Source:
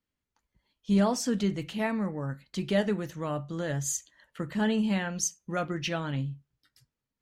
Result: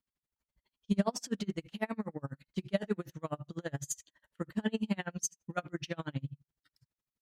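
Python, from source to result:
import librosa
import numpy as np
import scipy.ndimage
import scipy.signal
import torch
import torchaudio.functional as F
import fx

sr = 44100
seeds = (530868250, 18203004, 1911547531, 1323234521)

y = x * 10.0 ** (-35 * (0.5 - 0.5 * np.cos(2.0 * np.pi * 12.0 * np.arange(len(x)) / sr)) / 20.0)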